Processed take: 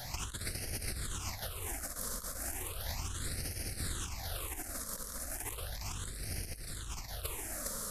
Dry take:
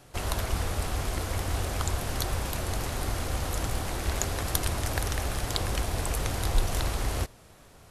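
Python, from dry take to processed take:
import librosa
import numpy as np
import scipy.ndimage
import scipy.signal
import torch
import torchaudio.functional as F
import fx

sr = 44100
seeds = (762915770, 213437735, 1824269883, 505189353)

y = fx.high_shelf(x, sr, hz=3300.0, db=12.0)
y = fx.over_compress(y, sr, threshold_db=-35.0, ratio=-0.5)
y = y + 10.0 ** (-3.5 / 20.0) * np.pad(y, (int(409 * sr / 1000.0), 0))[:len(y)]
y = fx.phaser_stages(y, sr, stages=8, low_hz=100.0, high_hz=1100.0, hz=0.35, feedback_pct=20)
y = y * librosa.db_to_amplitude(-1.5)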